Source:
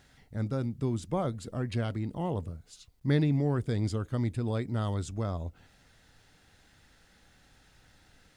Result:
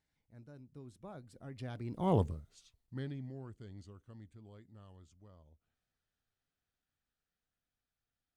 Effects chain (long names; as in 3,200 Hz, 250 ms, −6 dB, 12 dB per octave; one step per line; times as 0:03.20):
source passing by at 0:02.16, 27 m/s, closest 2.1 metres
level +4.5 dB